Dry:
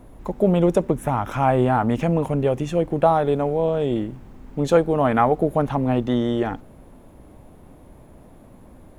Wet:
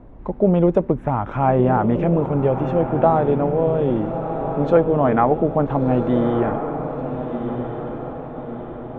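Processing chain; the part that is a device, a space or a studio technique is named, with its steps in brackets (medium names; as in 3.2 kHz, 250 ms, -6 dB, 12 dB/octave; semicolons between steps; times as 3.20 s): phone in a pocket (low-pass 3.1 kHz 12 dB/octave; treble shelf 2.4 kHz -11.5 dB); echo that smears into a reverb 1326 ms, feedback 50%, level -7.5 dB; trim +2 dB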